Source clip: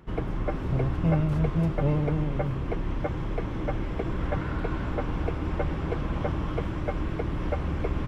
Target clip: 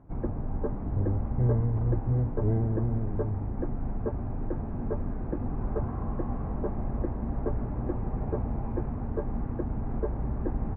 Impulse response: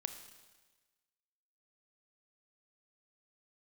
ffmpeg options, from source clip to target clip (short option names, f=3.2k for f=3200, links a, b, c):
-af "lowpass=1.3k,asetrate=33075,aresample=44100,volume=-1.5dB"